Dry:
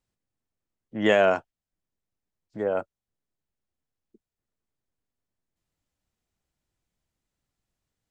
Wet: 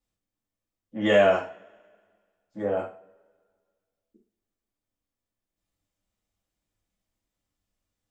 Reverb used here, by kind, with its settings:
coupled-rooms reverb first 0.36 s, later 1.8 s, from −28 dB, DRR −6 dB
level −7.5 dB

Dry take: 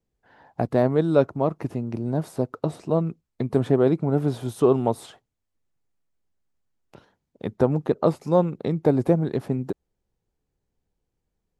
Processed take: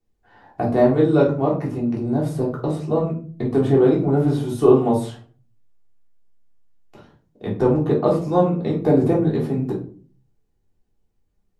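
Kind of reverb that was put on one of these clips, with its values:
rectangular room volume 290 cubic metres, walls furnished, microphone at 3.4 metres
level −3 dB

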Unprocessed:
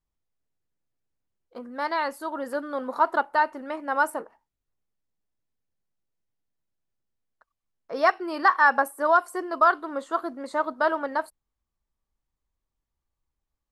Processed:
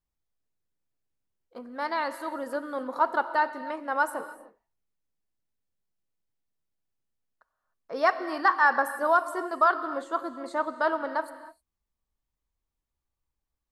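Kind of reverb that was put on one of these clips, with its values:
reverb whose tail is shaped and stops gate 330 ms flat, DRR 11.5 dB
level −2.5 dB

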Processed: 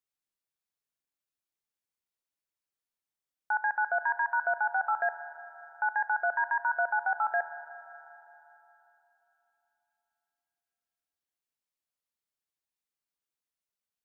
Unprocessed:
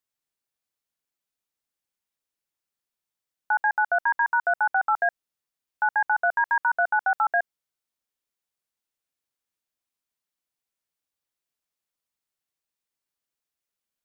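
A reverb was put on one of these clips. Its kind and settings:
spring reverb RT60 3.4 s, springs 37/58 ms, chirp 50 ms, DRR 11.5 dB
level −6 dB

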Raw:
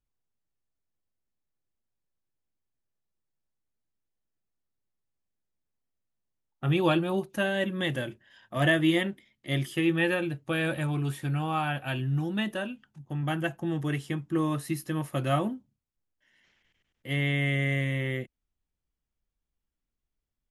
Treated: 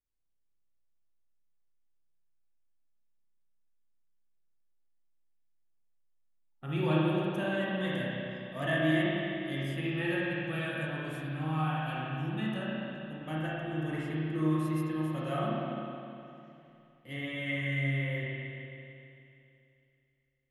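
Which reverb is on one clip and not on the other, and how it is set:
spring reverb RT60 2.8 s, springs 32/51 ms, chirp 35 ms, DRR −6.5 dB
level −11.5 dB

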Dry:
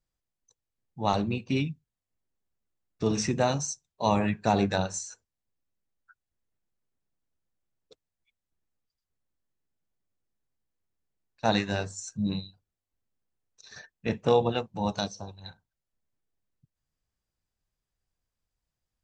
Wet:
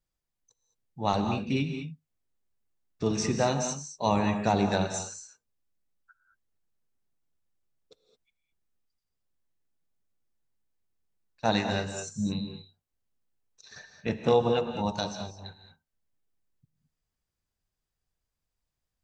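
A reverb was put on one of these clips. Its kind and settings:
reverb whose tail is shaped and stops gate 240 ms rising, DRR 6.5 dB
level −1 dB

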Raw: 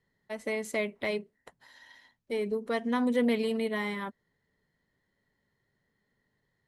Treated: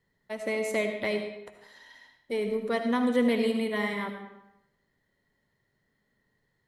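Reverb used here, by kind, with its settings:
comb and all-pass reverb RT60 0.86 s, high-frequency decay 0.8×, pre-delay 35 ms, DRR 5.5 dB
level +1.5 dB

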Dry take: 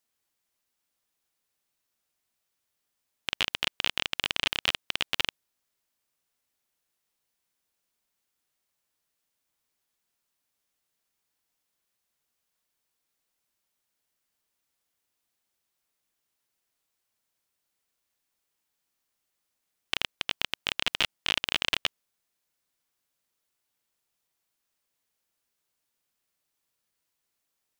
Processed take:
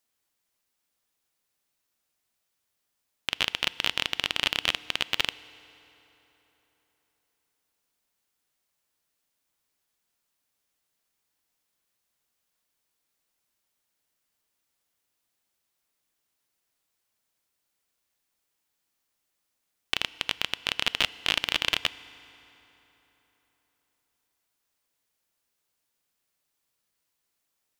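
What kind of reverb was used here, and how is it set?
feedback delay network reverb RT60 3.9 s, high-frequency decay 0.7×, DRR 17 dB
level +1.5 dB

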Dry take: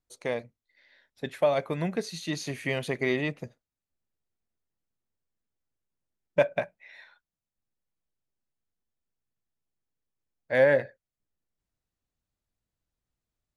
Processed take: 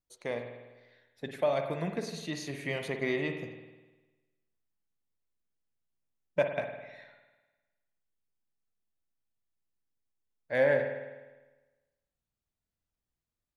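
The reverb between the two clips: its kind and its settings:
spring reverb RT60 1.2 s, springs 50 ms, chirp 35 ms, DRR 5 dB
level −5 dB

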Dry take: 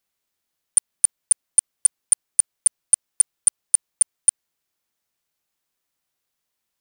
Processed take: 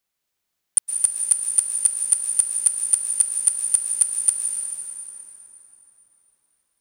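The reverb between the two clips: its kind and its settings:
dense smooth reverb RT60 4.2 s, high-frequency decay 0.65×, pre-delay 105 ms, DRR 0 dB
level −1 dB

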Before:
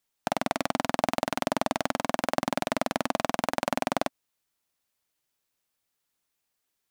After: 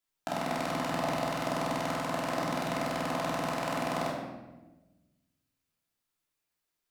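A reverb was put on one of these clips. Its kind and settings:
rectangular room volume 620 cubic metres, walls mixed, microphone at 3 metres
level −10 dB

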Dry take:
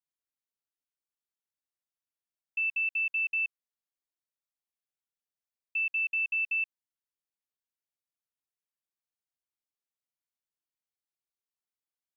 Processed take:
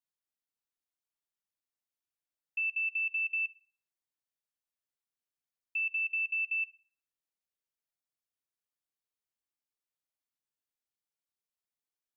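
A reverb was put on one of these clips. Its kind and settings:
feedback delay network reverb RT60 0.54 s, high-frequency decay 0.75×, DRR 16 dB
level −2.5 dB

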